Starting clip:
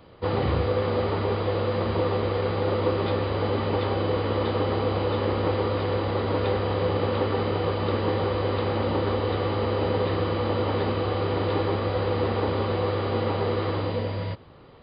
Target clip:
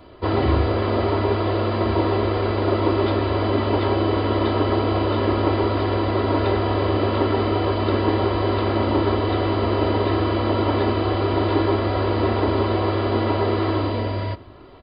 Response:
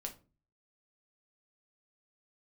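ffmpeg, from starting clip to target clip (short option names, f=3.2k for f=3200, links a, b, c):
-filter_complex "[0:a]aecho=1:1:3:0.65,asplit=2[a][b];[1:a]atrim=start_sample=2205,asetrate=43218,aresample=44100,lowpass=2k[c];[b][c]afir=irnorm=-1:irlink=0,volume=-6.5dB[d];[a][d]amix=inputs=2:normalize=0,volume=2.5dB"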